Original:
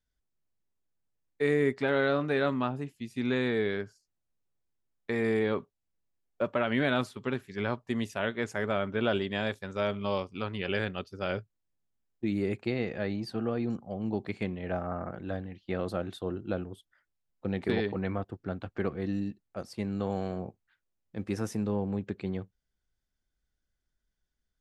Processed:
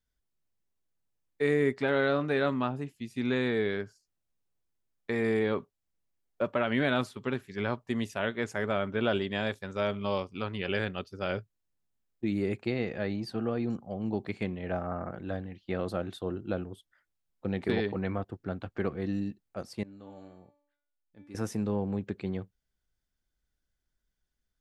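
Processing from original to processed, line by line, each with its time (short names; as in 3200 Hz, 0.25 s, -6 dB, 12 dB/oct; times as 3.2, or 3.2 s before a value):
19.83–21.35 resonator 290 Hz, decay 0.64 s, mix 90%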